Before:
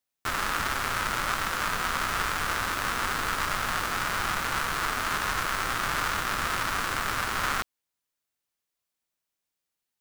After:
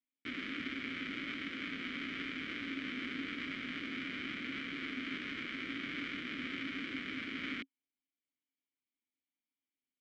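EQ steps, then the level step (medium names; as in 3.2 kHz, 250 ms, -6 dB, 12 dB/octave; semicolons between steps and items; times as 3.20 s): vowel filter i; distance through air 120 m; peaking EQ 310 Hz +2.5 dB 2.2 oct; +4.5 dB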